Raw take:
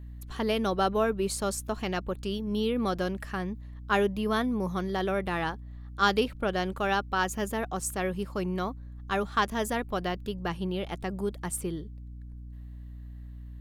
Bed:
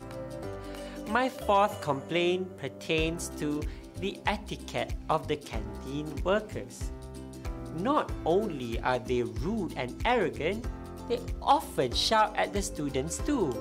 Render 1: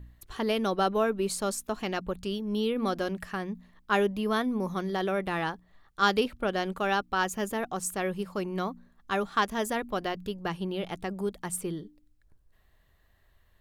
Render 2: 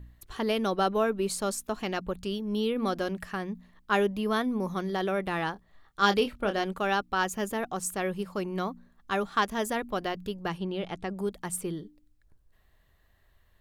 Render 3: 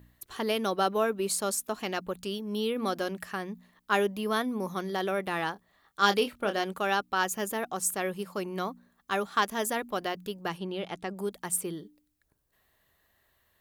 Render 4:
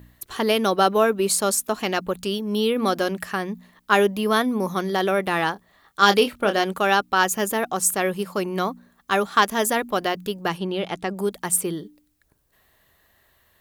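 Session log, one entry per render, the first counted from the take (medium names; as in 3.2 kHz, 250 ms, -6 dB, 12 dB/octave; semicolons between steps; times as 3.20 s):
de-hum 60 Hz, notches 5
5.53–6.64 s: doubling 25 ms -8.5 dB; 10.58–11.17 s: distance through air 55 m
high-pass 230 Hz 6 dB/octave; treble shelf 8.9 kHz +9.5 dB
trim +8.5 dB; peak limiter -3 dBFS, peak gain reduction 2 dB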